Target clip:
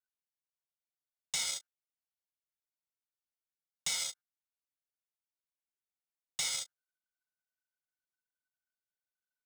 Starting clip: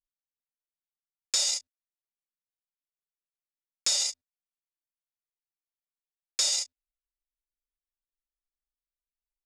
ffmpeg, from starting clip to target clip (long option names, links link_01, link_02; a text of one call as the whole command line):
ffmpeg -i in.wav -af "aecho=1:1:1.4:0.61,aeval=exprs='val(0)*sin(2*PI*1500*n/s)':channel_layout=same,acrusher=bits=3:mode=log:mix=0:aa=0.000001,volume=-6dB" out.wav